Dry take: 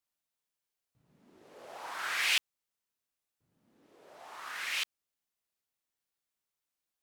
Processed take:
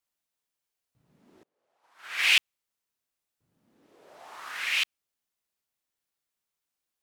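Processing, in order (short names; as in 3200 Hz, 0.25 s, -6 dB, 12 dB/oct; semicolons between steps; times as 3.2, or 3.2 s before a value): dynamic EQ 2600 Hz, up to +7 dB, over -45 dBFS, Q 1.4; 1.43–2.27 upward expander 2.5:1, over -45 dBFS; gain +2 dB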